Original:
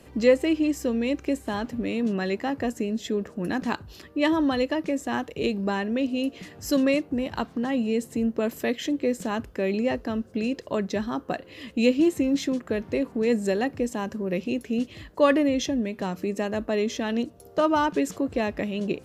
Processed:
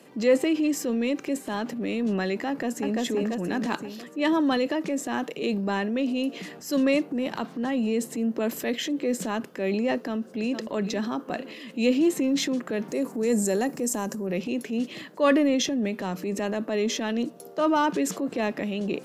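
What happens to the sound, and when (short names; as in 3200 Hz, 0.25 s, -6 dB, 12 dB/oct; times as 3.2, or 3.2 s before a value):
2.48–3 echo throw 0.34 s, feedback 50%, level -2 dB
10.05–10.62 echo throw 0.46 s, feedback 45%, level -14.5 dB
12.88–14.27 EQ curve 890 Hz 0 dB, 3400 Hz -5 dB, 7000 Hz +11 dB
whole clip: steep high-pass 160 Hz; transient shaper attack -5 dB, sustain +6 dB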